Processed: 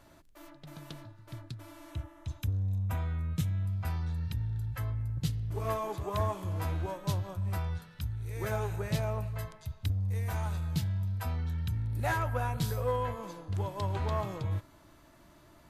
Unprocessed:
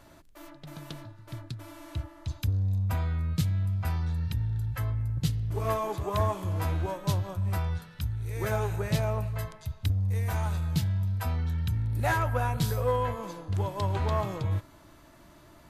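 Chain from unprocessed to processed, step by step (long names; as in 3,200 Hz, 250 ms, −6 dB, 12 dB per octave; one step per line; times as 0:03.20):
0:01.91–0:03.66: parametric band 4,600 Hz −10.5 dB 0.25 octaves
level −4 dB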